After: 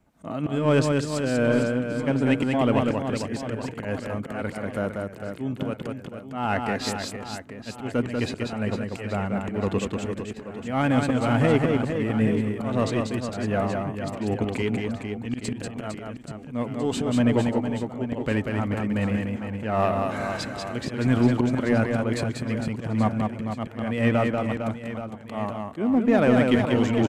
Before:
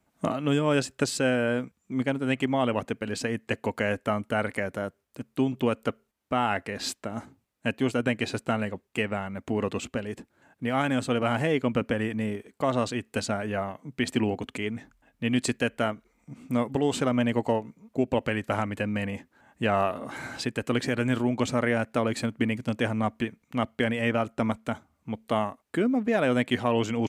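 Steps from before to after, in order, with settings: tilt EQ -1.5 dB/octave; slow attack 225 ms; in parallel at -6 dB: hard clipper -23.5 dBFS, distortion -8 dB; on the sum: reverse bouncing-ball echo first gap 190 ms, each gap 1.4×, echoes 5

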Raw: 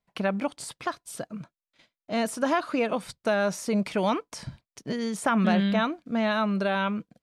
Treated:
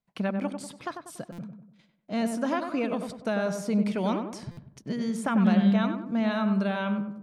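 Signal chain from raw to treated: peaking EQ 190 Hz +7 dB 1.2 oct; on a send: filtered feedback delay 96 ms, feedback 48%, low-pass 1.4 kHz, level -5.5 dB; on the sum: buffer glitch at 1.32/4.51 s, samples 256, times 10; trim -5.5 dB

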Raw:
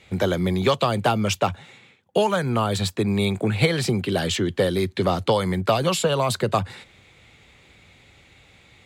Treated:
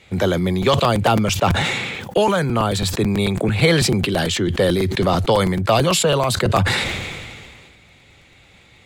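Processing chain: crackling interface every 0.11 s, samples 256, repeat, from 0.62 s; decay stretcher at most 29 dB/s; trim +2.5 dB

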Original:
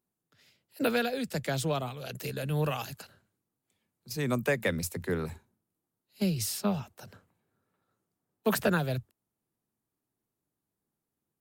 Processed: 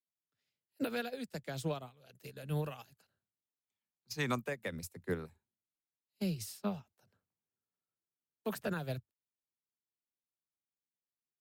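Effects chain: peak limiter -22 dBFS, peak gain reduction 6.5 dB; time-frequency box 3.50–4.42 s, 740–7200 Hz +7 dB; upward expansion 2.5:1, over -41 dBFS; trim -2.5 dB

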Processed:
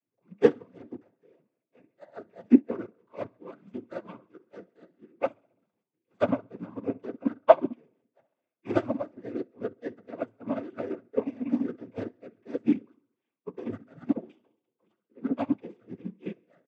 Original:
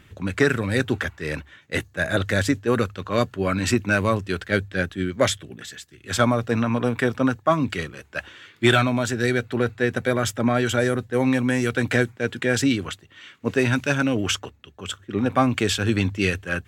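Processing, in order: median filter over 25 samples; in parallel at -5 dB: hard clipper -16 dBFS, distortion -14 dB; on the sum: reverberation RT60 0.40 s, pre-delay 3 ms, DRR -1 dB; spectral noise reduction 6 dB; on a send: feedback delay 67 ms, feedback 58%, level -14.5 dB; on the sum: noise-vocoded speech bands 16; upward expansion 2.5:1, over -14 dBFS; trim -14.5 dB

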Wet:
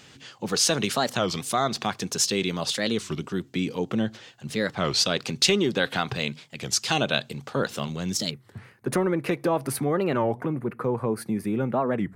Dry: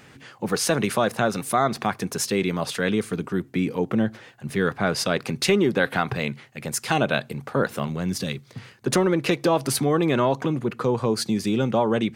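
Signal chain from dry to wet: high-order bell 4.7 kHz +9 dB, from 8.32 s -8 dB, from 10.24 s -14.5 dB; warped record 33 1/3 rpm, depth 250 cents; trim -3.5 dB

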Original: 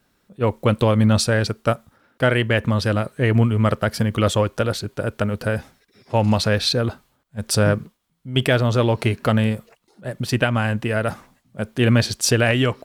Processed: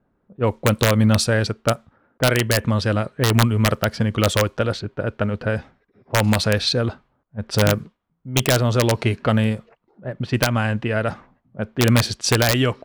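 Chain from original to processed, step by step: level-controlled noise filter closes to 940 Hz, open at -14 dBFS; integer overflow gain 7.5 dB

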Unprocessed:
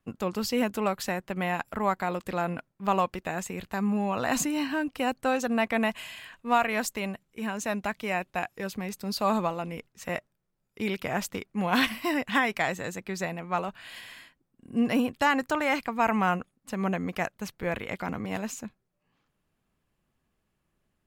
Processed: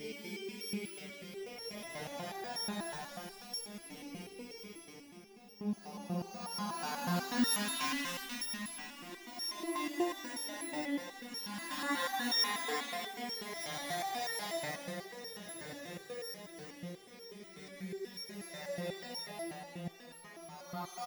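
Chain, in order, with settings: sorted samples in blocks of 8 samples; Paulstretch 7.8×, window 0.25 s, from 10.82 s; feedback delay 839 ms, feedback 58%, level -15.5 dB; resonator arpeggio 8.2 Hz 150–460 Hz; trim +1 dB

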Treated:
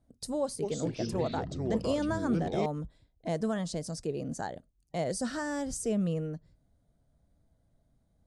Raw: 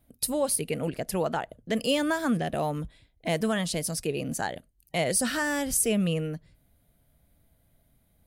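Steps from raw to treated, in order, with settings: low-pass 7.5 kHz 24 dB/octave; peaking EQ 2.6 kHz -14 dB 1.2 oct; 0.42–2.66 s: ever faster or slower copies 202 ms, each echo -5 st, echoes 3; trim -3.5 dB

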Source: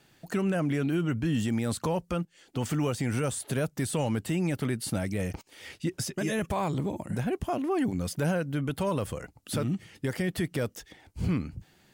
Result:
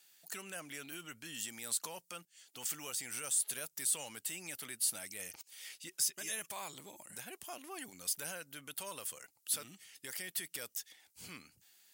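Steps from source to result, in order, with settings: differentiator; trim +3 dB

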